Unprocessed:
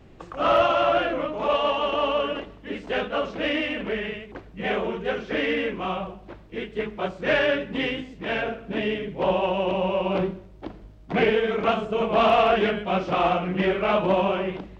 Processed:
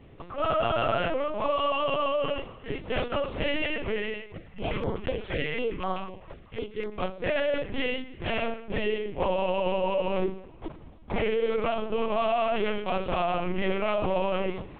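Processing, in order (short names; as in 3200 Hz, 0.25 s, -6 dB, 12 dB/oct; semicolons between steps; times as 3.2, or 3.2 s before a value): low shelf 160 Hz -2.5 dB; notch 1600 Hz, Q 6.4; limiter -18 dBFS, peak gain reduction 8 dB; narrowing echo 0.217 s, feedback 61%, band-pass 1400 Hz, level -21 dB; LPC vocoder at 8 kHz pitch kept; 4.21–6.92 stepped notch 8 Hz 260–2600 Hz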